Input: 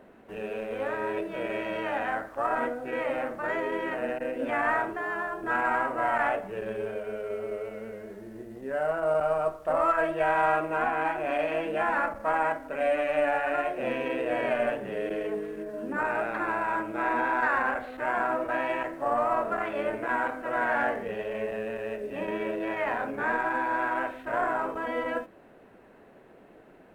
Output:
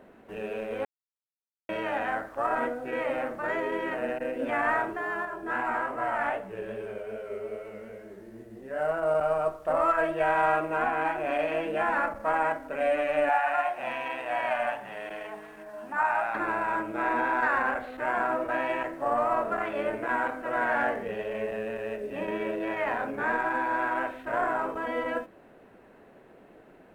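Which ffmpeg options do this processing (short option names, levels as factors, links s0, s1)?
-filter_complex "[0:a]asettb=1/sr,asplit=3[s0][s1][s2];[s0]atrim=end=5.254[s3];[s1]atrim=start=5.25:end=8.79,asetpts=PTS-STARTPTS,afade=t=in:d=0.004:c=qsin,afade=t=out:st=3.536:d=0.004:c=qsin,flanger=delay=15:depth=6.4:speed=2.5[s4];[s2]atrim=start=8.786[s5];[s3][s4]acrossfade=d=0.004:c1=hsin:c2=qsin[s6];[s6][s5]acrossfade=d=0.004:c1=qsin:c2=hsin,asettb=1/sr,asplit=3[s7][s8][s9];[s7]atrim=end=13.294[s10];[s8]atrim=start=13.29:end=16.35,asetpts=PTS-STARTPTS,afade=t=in:d=0.004:c=qsin,afade=t=out:st=3.056:d=0.004:c=qsin,lowshelf=f=600:t=q:w=3:g=-9.5[s11];[s9]atrim=start=16.346[s12];[s10][s11]acrossfade=d=0.004:c1=hsin:c2=qsin[s13];[s13][s12]acrossfade=d=0.004:c1=qsin:c2=hsin,asplit=3[s14][s15][s16];[s14]atrim=end=0.85,asetpts=PTS-STARTPTS,afade=t=out:st=0.846:d=0.004:c=hsin[s17];[s15]atrim=start=0.85:end=1.69,asetpts=PTS-STARTPTS,volume=0[s18];[s16]atrim=start=1.69,asetpts=PTS-STARTPTS,afade=t=in:d=0.004:c=hsin[s19];[s17][s18][s19]concat=n=3:v=0:a=1"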